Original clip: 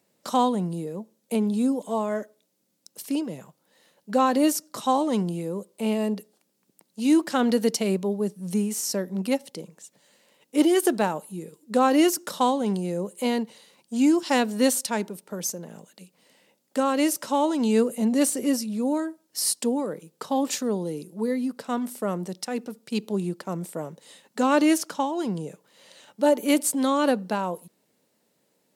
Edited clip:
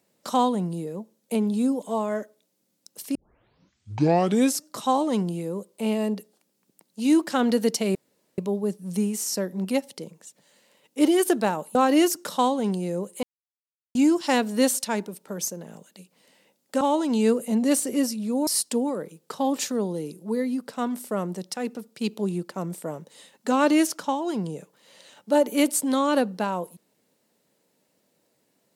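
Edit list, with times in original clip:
3.15 tape start 1.51 s
7.95 insert room tone 0.43 s
11.32–11.77 cut
13.25–13.97 mute
16.83–17.31 cut
18.97–19.38 cut

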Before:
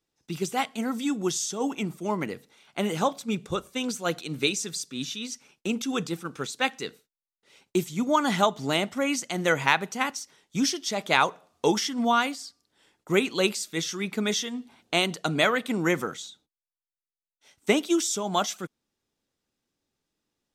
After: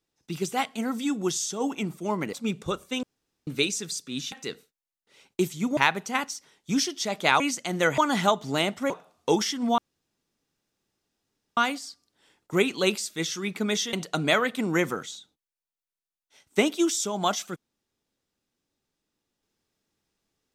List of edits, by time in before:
2.33–3.17 cut
3.87–4.31 room tone
5.16–6.68 cut
8.13–9.05 swap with 9.63–11.26
12.14 insert room tone 1.79 s
14.5–15.04 cut

